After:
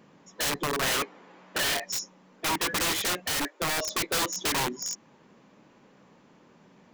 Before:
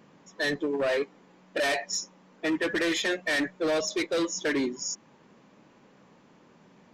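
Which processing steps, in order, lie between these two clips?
0.97–1.78 s: overdrive pedal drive 15 dB, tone 2.4 kHz, clips at -21.5 dBFS; 3.26–3.89 s: elliptic high-pass 290 Hz, stop band 40 dB; integer overflow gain 23.5 dB

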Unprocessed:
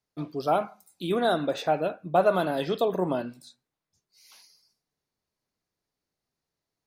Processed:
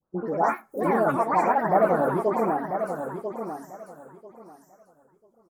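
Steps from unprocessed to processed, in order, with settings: sawtooth pitch modulation -5.5 st, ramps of 1456 ms; FFT filter 1.1 kHz 0 dB, 1.6 kHz -19 dB, 2.8 kHz -28 dB, 5.7 kHz -4 dB; in parallel at +3 dB: compression, threshold -38 dBFS, peak gain reduction 19.5 dB; on the sum: tape speed +25%; phase dispersion highs, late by 146 ms, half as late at 2.4 kHz; ever faster or slower copies 113 ms, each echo +4 st, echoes 2; on a send: feedback delay 992 ms, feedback 20%, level -8 dB

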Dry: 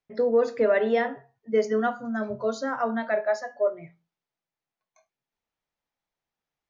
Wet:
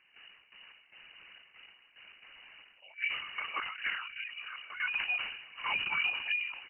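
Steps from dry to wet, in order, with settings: reverse the whole clip; wind noise 590 Hz -41 dBFS; tilt shelf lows -9 dB, about 1.1 kHz; comb 6.9 ms, depth 90%; level held to a coarse grid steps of 12 dB; distance through air 460 m; on a send: delay 1147 ms -11.5 dB; on the sum: LPC vocoder at 8 kHz whisper; frequency inversion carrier 2.9 kHz; decay stretcher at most 66 dB/s; trim -5.5 dB

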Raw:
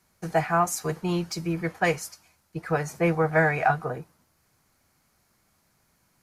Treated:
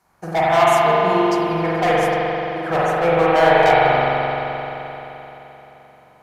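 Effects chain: peaking EQ 820 Hz +12.5 dB 1.7 oct; overload inside the chain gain 14.5 dB; spring tank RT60 3.7 s, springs 43 ms, chirp 50 ms, DRR -7.5 dB; trim -2.5 dB

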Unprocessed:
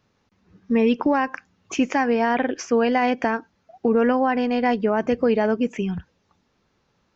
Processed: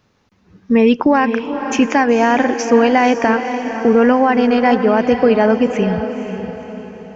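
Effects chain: echo that smears into a reverb 498 ms, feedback 46%, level -8.5 dB; trim +7 dB

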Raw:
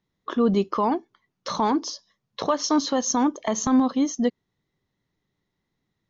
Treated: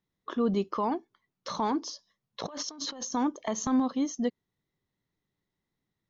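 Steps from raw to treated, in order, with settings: 2.40–3.13 s: compressor with a negative ratio -33 dBFS, ratio -1; trim -6.5 dB

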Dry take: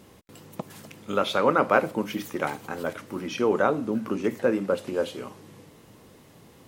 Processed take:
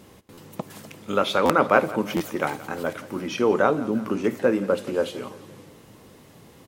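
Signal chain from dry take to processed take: on a send: feedback delay 173 ms, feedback 51%, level -18 dB; on the sum: buffer glitch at 0.33/1.45/2.16 s, samples 512, times 3; trim +2.5 dB

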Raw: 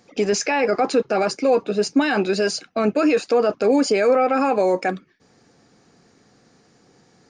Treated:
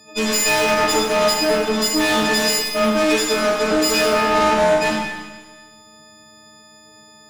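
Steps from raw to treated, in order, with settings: partials quantised in pitch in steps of 6 st; valve stage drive 22 dB, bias 0.55; Schroeder reverb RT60 1.3 s, combs from 33 ms, DRR -1 dB; trim +5 dB

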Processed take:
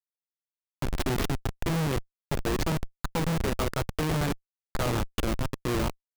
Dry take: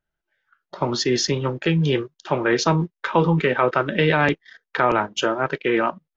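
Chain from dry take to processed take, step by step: 0.89–1.54 s: self-modulated delay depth 0.44 ms; Schmitt trigger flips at -17.5 dBFS; trim -4 dB

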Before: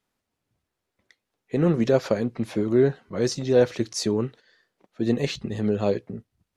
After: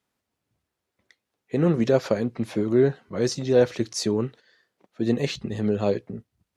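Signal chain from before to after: high-pass 44 Hz

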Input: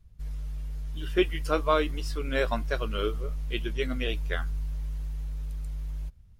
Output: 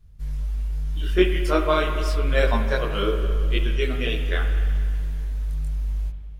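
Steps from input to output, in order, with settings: chorus voices 2, 0.84 Hz, delay 23 ms, depth 2.5 ms; spring tank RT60 2.3 s, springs 50/54/59 ms, chirp 45 ms, DRR 6 dB; trim +7.5 dB

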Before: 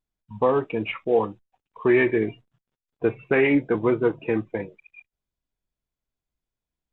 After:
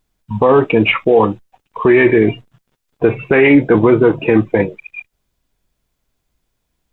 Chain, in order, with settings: loudness maximiser +18.5 dB; trim -1 dB

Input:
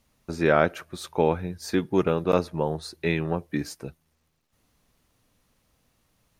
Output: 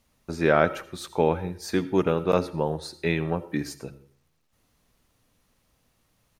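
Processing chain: de-hum 68.72 Hz, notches 5; on a send: comb 2.2 ms + reverberation RT60 0.45 s, pre-delay 40 ms, DRR 15 dB

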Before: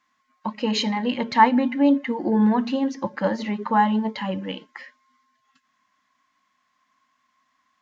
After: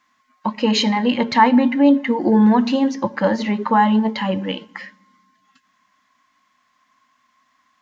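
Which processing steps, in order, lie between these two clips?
2.21–2.89 s: tone controls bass 0 dB, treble +4 dB; in parallel at +2 dB: peak limiter -14 dBFS, peak gain reduction 10.5 dB; on the sum: reverberation RT60 1.1 s, pre-delay 8 ms, DRR 18.5 dB; trim -1 dB

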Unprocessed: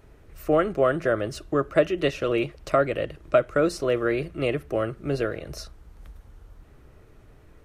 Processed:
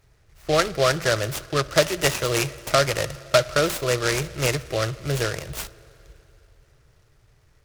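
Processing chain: gate -40 dBFS, range -10 dB; graphic EQ 125/250/2000/4000 Hz +8/-11/+6/+9 dB; on a send at -18 dB: reverberation RT60 3.5 s, pre-delay 51 ms; on the sum: delay time shaken by noise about 3.2 kHz, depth 0.073 ms; trim +1.5 dB

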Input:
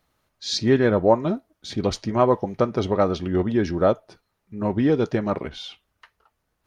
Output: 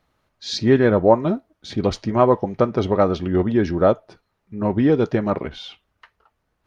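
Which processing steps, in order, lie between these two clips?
treble shelf 5.8 kHz -11 dB; trim +3 dB

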